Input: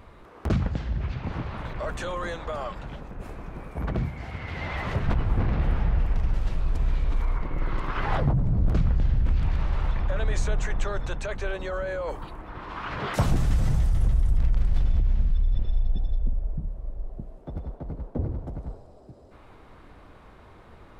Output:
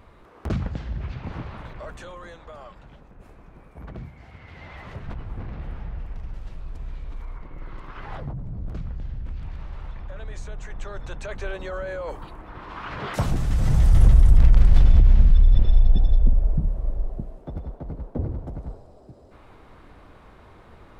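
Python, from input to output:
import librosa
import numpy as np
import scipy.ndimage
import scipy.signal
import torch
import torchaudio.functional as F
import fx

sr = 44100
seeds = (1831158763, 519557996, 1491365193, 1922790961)

y = fx.gain(x, sr, db=fx.line((1.43, -2.0), (2.23, -10.0), (10.56, -10.0), (11.38, -1.0), (13.46, -1.0), (13.97, 8.5), (16.93, 8.5), (17.59, 1.0)))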